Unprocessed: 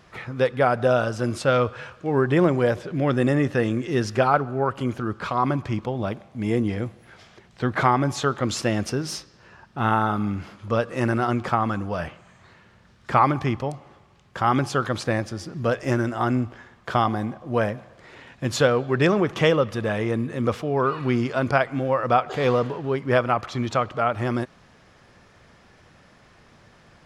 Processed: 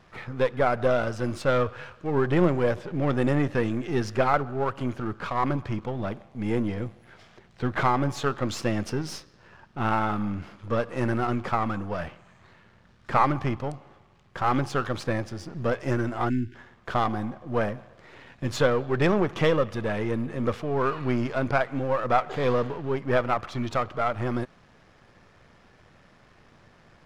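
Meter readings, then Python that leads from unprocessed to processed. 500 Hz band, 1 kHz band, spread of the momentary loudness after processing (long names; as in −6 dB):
−3.5 dB, −3.5 dB, 10 LU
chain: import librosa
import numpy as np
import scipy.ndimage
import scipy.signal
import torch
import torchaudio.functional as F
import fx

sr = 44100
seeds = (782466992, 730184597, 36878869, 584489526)

y = np.where(x < 0.0, 10.0 ** (-7.0 / 20.0) * x, x)
y = fx.spec_erase(y, sr, start_s=16.3, length_s=0.25, low_hz=390.0, high_hz=1400.0)
y = fx.high_shelf(y, sr, hz=5200.0, db=-7.0)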